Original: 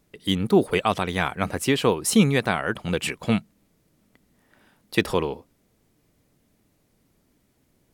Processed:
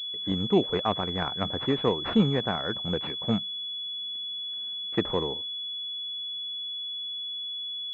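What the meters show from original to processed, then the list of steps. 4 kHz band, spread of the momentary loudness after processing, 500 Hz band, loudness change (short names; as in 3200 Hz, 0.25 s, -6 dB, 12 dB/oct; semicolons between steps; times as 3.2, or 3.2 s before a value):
+6.0 dB, 7 LU, -4.5 dB, -5.5 dB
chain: pulse-width modulation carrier 3400 Hz; gain -4.5 dB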